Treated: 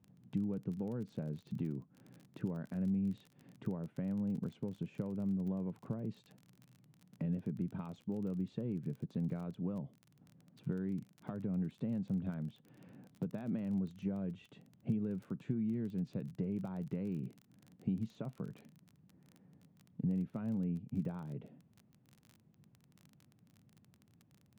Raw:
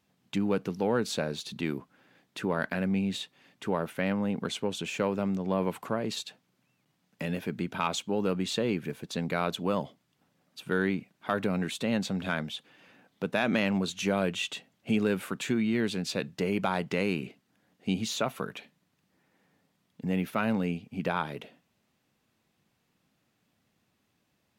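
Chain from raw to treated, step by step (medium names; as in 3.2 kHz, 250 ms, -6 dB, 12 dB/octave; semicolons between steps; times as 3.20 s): compression 3:1, threshold -46 dBFS, peak gain reduction 17.5 dB; band-pass filter 130 Hz, Q 1.4; crackle 26 per s -59 dBFS; trim +13 dB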